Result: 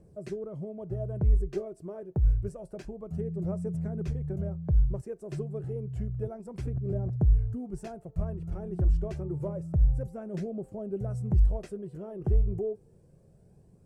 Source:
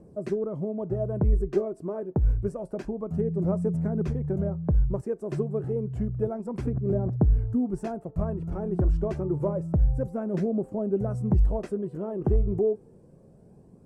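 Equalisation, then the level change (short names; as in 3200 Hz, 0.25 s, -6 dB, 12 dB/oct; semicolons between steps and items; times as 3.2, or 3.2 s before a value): dynamic EQ 1600 Hz, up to -3 dB, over -48 dBFS, Q 1; graphic EQ 250/500/1000 Hz -11/-4/-8 dB; 0.0 dB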